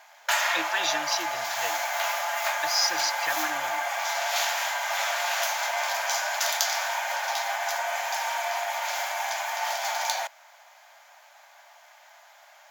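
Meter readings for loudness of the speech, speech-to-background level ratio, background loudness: −29.0 LKFS, −2.0 dB, −27.0 LKFS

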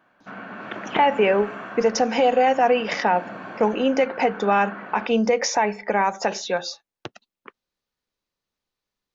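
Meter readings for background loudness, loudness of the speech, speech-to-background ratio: −37.0 LKFS, −21.5 LKFS, 15.5 dB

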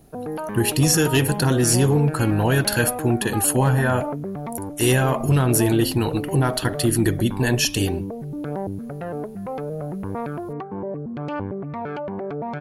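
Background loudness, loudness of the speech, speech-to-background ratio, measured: −30.5 LKFS, −20.0 LKFS, 10.5 dB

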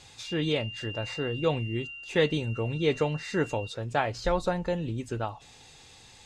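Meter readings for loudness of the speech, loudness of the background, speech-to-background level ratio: −30.0 LKFS, −40.5 LKFS, 10.5 dB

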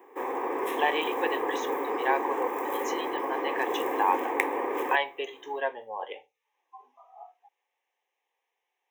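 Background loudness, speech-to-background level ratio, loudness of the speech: −31.0 LKFS, −1.0 dB, −32.0 LKFS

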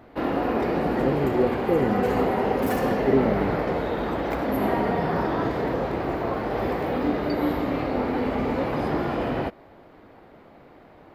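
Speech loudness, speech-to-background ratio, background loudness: −27.5 LKFS, −2.0 dB, −25.5 LKFS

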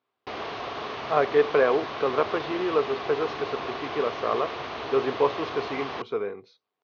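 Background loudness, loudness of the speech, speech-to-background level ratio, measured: −34.0 LKFS, −27.0 LKFS, 7.0 dB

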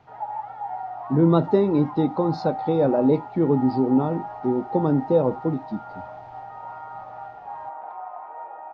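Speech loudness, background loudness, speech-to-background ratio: −22.0 LKFS, −35.5 LKFS, 13.5 dB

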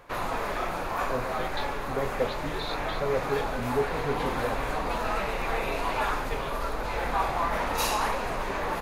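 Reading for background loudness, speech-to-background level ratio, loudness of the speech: −30.5 LKFS, −3.0 dB, −33.5 LKFS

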